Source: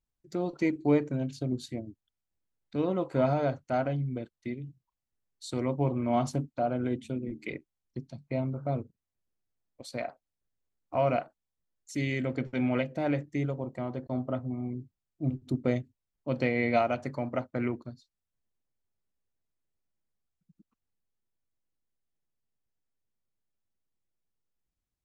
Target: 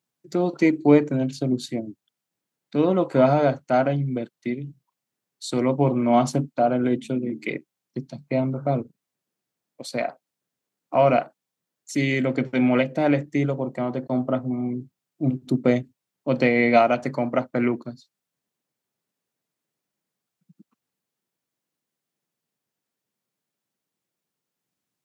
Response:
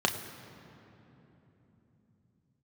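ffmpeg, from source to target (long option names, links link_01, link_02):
-af "highpass=frequency=140:width=0.5412,highpass=frequency=140:width=1.3066,volume=9dB"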